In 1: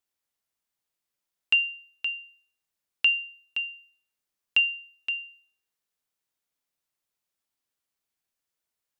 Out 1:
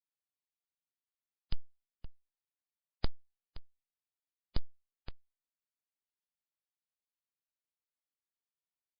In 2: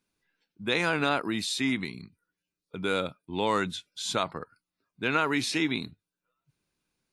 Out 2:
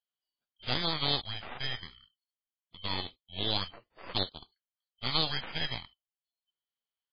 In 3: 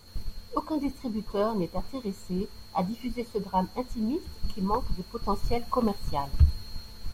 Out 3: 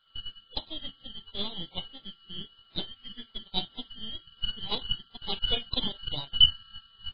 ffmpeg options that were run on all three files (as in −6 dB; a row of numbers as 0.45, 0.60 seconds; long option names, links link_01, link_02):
-af "afftfilt=real='real(if(lt(b,272),68*(eq(floor(b/68),0)*2+eq(floor(b/68),1)*3+eq(floor(b/68),2)*0+eq(floor(b/68),3)*1)+mod(b,68),b),0)':imag='imag(if(lt(b,272),68*(eq(floor(b/68),0)*2+eq(floor(b/68),1)*3+eq(floor(b/68),2)*0+eq(floor(b/68),3)*1)+mod(b,68),b),0)':win_size=2048:overlap=0.75,aeval=exprs='0.447*(cos(1*acos(clip(val(0)/0.447,-1,1)))-cos(1*PI/2))+0.0447*(cos(3*acos(clip(val(0)/0.447,-1,1)))-cos(3*PI/2))+0.0141*(cos(5*acos(clip(val(0)/0.447,-1,1)))-cos(5*PI/2))+0.0708*(cos(6*acos(clip(val(0)/0.447,-1,1)))-cos(6*PI/2))+0.0447*(cos(7*acos(clip(val(0)/0.447,-1,1)))-cos(7*PI/2))':channel_layout=same" -ar 11025 -c:a libmp3lame -b:a 16k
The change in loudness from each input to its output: −21.5, −4.5, +1.0 LU